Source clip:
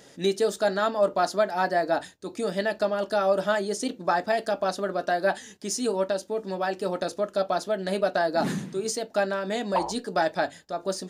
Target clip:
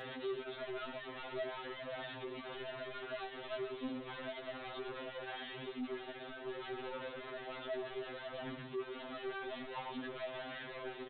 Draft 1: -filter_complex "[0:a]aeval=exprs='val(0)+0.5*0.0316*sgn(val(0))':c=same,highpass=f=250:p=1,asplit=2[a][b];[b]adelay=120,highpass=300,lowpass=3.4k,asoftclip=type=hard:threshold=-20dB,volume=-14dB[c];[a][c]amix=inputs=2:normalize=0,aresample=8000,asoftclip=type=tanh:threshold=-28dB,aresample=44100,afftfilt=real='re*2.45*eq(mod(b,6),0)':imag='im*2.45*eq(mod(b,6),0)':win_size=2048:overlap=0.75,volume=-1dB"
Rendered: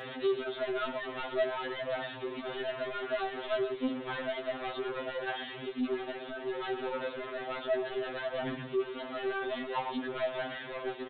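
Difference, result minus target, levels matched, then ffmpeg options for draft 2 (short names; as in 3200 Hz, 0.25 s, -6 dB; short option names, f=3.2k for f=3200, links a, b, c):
soft clip: distortion -5 dB
-filter_complex "[0:a]aeval=exprs='val(0)+0.5*0.0316*sgn(val(0))':c=same,highpass=f=250:p=1,asplit=2[a][b];[b]adelay=120,highpass=300,lowpass=3.4k,asoftclip=type=hard:threshold=-20dB,volume=-14dB[c];[a][c]amix=inputs=2:normalize=0,aresample=8000,asoftclip=type=tanh:threshold=-39.5dB,aresample=44100,afftfilt=real='re*2.45*eq(mod(b,6),0)':imag='im*2.45*eq(mod(b,6),0)':win_size=2048:overlap=0.75,volume=-1dB"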